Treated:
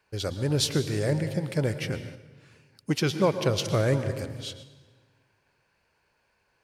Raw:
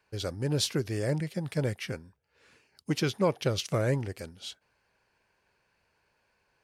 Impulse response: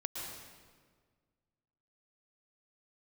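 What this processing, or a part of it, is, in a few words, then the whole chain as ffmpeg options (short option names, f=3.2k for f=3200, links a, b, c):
keyed gated reverb: -filter_complex "[0:a]asplit=3[a][b][c];[1:a]atrim=start_sample=2205[d];[b][d]afir=irnorm=-1:irlink=0[e];[c]apad=whole_len=292766[f];[e][f]sidechaingate=range=-6dB:threshold=-55dB:ratio=16:detection=peak,volume=-5.5dB[g];[a][g]amix=inputs=2:normalize=0"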